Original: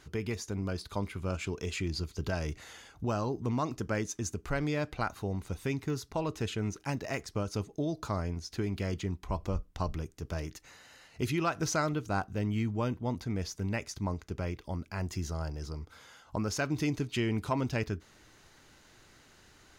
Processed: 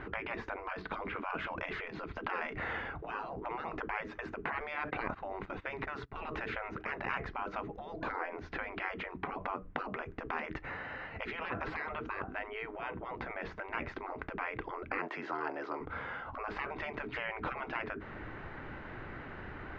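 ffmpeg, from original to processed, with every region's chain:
-filter_complex "[0:a]asettb=1/sr,asplit=3[a][b][c];[a]atrim=end=4.584[d];[b]atrim=start=4.58:end=6.49,asetpts=PTS-STARTPTS,afade=t=in:d=0.004:c=qsin,afade=t=out:st=1.906:d=0.004:c=qsin,agate=range=-19dB:threshold=-48dB:ratio=16:release=100:detection=peak,highshelf=f=3.6k:g=6.5,acompressor=threshold=-36dB:ratio=4:attack=3.2:release=140:knee=1:detection=peak[e];[c]atrim=start=6.486[f];[d][e]acrossfade=d=0.004:c1=hsin:c2=qsin[g];[g][f]acrossfade=d=0.004:c1=qsin:c2=hsin,asettb=1/sr,asplit=3[h][i][j];[h]atrim=end=14.984[k];[i]atrim=start=14.98:end=15.81,asetpts=PTS-STARTPTS,afade=t=in:d=0.004:c=qsin,afade=t=out:st=0.826:d=0.004:c=qsin,highpass=f=450:w=0.5412,highpass=f=450:w=1.3066,afreqshift=-24[l];[j]atrim=start=15.806[m];[k][l]acrossfade=d=0.004:c1=hsin:c2=qsin[n];[n][m]acrossfade=d=0.004:c1=qsin:c2=hsin,acompressor=threshold=-33dB:ratio=8,afftfilt=real='re*lt(hypot(re,im),0.0178)':imag='im*lt(hypot(re,im),0.0178)':win_size=1024:overlap=0.75,lowpass=f=2.1k:w=0.5412,lowpass=f=2.1k:w=1.3066,volume=16dB"

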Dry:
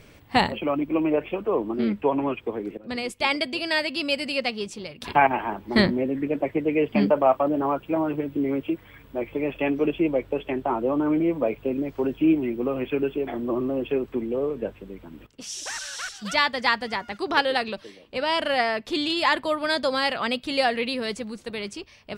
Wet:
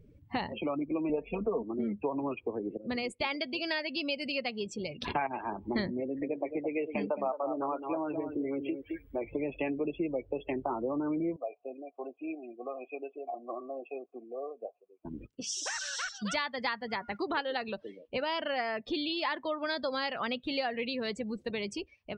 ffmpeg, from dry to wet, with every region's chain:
-filter_complex "[0:a]asettb=1/sr,asplit=3[a][b][c];[a]atrim=end=1.094[d];[b]atrim=start=1.09:end=1.63,asetpts=PTS-STARTPTS,afade=t=in:d=0.004:c=qsin,afade=t=out:st=0.536:d=0.004:c=qsin,lowshelf=f=220:g=7.5,aecho=1:1:4.4:0.89,atrim=end_sample=23814[e];[c]atrim=start=1.626[f];[d][e]acrossfade=d=0.004:c1=hsin:c2=qsin[g];[g][f]acrossfade=d=0.004:c1=qsin:c2=hsin,asettb=1/sr,asplit=3[h][i][j];[h]atrim=end=6.004[k];[i]atrim=start=6:end=9.24,asetpts=PTS-STARTPTS,afade=t=in:d=0.004:c=qsin,afade=t=out:st=3.236:d=0.004:c=qsin,equalizer=f=160:w=0.92:g=-8.5,aecho=1:1:216:0.355,atrim=end_sample=142884[l];[j]atrim=start=9.236[m];[k][l]acrossfade=d=0.004:c1=hsin:c2=qsin[n];[n][m]acrossfade=d=0.004:c1=qsin:c2=hsin,asettb=1/sr,asplit=3[o][p][q];[o]atrim=end=11.364[r];[p]atrim=start=11.36:end=15.05,asetpts=PTS-STARTPTS,afade=t=in:d=0.004:c=qsin,afade=t=out:st=3.686:d=0.004:c=qsin,asplit=3[s][t][u];[s]bandpass=f=730:t=q:w=8,volume=0dB[v];[t]bandpass=f=1.09k:t=q:w=8,volume=-6dB[w];[u]bandpass=f=2.44k:t=q:w=8,volume=-9dB[x];[v][w][x]amix=inputs=3:normalize=0,acrusher=bits=8:mode=log:mix=0:aa=0.000001[y];[q]atrim=start=15.046[z];[r][y]acrossfade=d=0.004:c1=hsin:c2=qsin[aa];[aa][z]acrossfade=d=0.004:c1=qsin:c2=hsin,acompressor=threshold=-33dB:ratio=4,afftdn=nr=27:nf=-43,dynaudnorm=f=250:g=3:m=4dB,volume=-2.5dB"

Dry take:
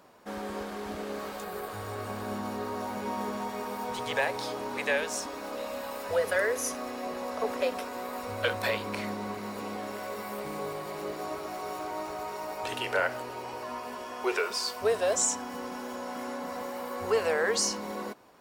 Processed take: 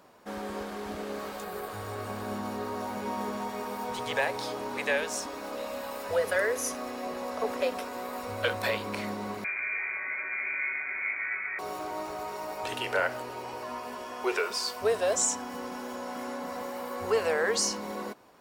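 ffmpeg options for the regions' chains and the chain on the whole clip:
-filter_complex "[0:a]asettb=1/sr,asplit=3[a][b][c];[a]atrim=end=9.444[d];[b]atrim=start=9.44:end=11.59,asetpts=PTS-STARTPTS,afade=t=in:d=0.004:c=qsin,afade=t=out:st=2.146:d=0.004:c=qsin,lowshelf=f=390:g=8.5,lowpass=f=2.2k:t=q:w=0.5098,lowpass=f=2.2k:t=q:w=0.6013,lowpass=f=2.2k:t=q:w=0.9,lowpass=f=2.2k:t=q:w=2.563,afreqshift=-2600[e];[c]atrim=start=11.586[f];[d][e]acrossfade=d=0.004:c1=hsin:c2=qsin[g];[g][f]acrossfade=d=0.004:c1=qsin:c2=hsin"

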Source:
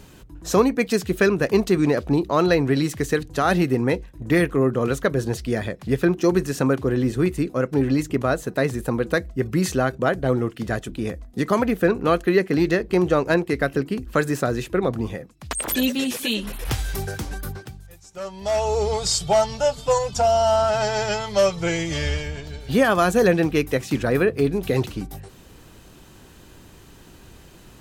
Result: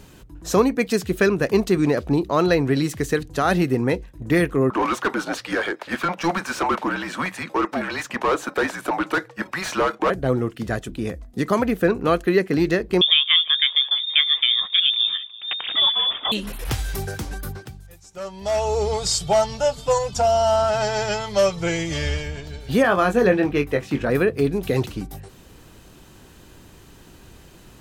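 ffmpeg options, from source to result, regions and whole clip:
-filter_complex "[0:a]asettb=1/sr,asplit=3[a][b][c];[a]atrim=end=4.704[d];[b]atrim=start=4.7:end=10.1,asetpts=PTS-STARTPTS,afade=t=in:d=0.004:c=qsin,afade=t=out:st=5.396:d=0.004:c=qsin,afreqshift=-180,highpass=450,asplit=2[e][f];[f]highpass=f=720:p=1,volume=25dB,asoftclip=type=tanh:threshold=-9.5dB[g];[e][g]amix=inputs=2:normalize=0,lowpass=f=1.1k:p=1,volume=-6dB[h];[c]atrim=start=10.096[i];[d][h]acrossfade=d=0.004:c1=hsin:c2=qsin[j];[j][i]acrossfade=d=0.004:c1=qsin:c2=hsin,asettb=1/sr,asplit=3[k][l][m];[k]atrim=end=13.014[n];[l]atrim=start=13.01:end=16.32,asetpts=PTS-STARTPTS,afade=t=in:d=0.004:c=qsin,afade=t=out:st=3.306:d=0.004:c=qsin,lowshelf=f=190:g=9.5,aecho=1:1:335|670:0.0944|0.0283,atrim=end_sample=145971,lowpass=f=3.1k:t=q:w=0.5098,lowpass=f=3.1k:t=q:w=0.6013,lowpass=f=3.1k:t=q:w=0.9,lowpass=f=3.1k:t=q:w=2.563,afreqshift=-3700[o];[m]atrim=start=16.316[p];[n][o]acrossfade=d=0.004:c1=hsin:c2=qsin[q];[q][p]acrossfade=d=0.004:c1=qsin:c2=hsin,asettb=1/sr,asplit=3[r][s][t];[r]atrim=end=22.824[u];[s]atrim=start=22.82:end=24.1,asetpts=PTS-STARTPTS,afade=t=in:d=0.004:c=qsin,afade=t=out:st=1.276:d=0.004:c=qsin,bass=f=250:g=-3,treble=f=4k:g=-11,asplit=2[v][w];[w]adelay=21,volume=-6.5dB[x];[v][x]amix=inputs=2:normalize=0,atrim=end_sample=56448[y];[t]atrim=start=24.096[z];[u][y]acrossfade=d=0.004:c1=hsin:c2=qsin[aa];[aa][z]acrossfade=d=0.004:c1=qsin:c2=hsin"

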